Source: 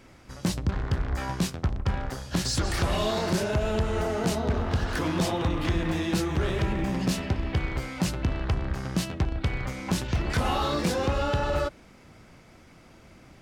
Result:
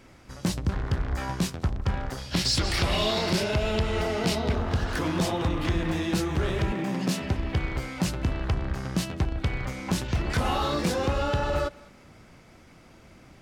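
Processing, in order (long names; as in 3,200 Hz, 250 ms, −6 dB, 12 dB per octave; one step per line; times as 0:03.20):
0:02.18–0:04.55: gain on a spectral selection 1,900–5,700 Hz +6 dB
0:06.72–0:07.22: high-pass filter 140 Hz 24 dB per octave
on a send: feedback echo with a high-pass in the loop 200 ms, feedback 25%, level −22.5 dB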